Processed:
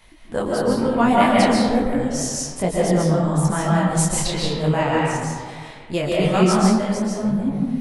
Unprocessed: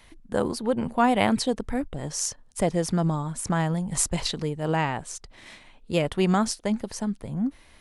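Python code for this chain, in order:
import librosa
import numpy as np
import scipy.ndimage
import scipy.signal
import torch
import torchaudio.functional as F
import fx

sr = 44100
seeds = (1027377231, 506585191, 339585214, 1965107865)

y = fx.rev_freeverb(x, sr, rt60_s=1.7, hf_ratio=0.45, predelay_ms=100, drr_db=-4.0)
y = fx.detune_double(y, sr, cents=37)
y = y * librosa.db_to_amplitude(5.0)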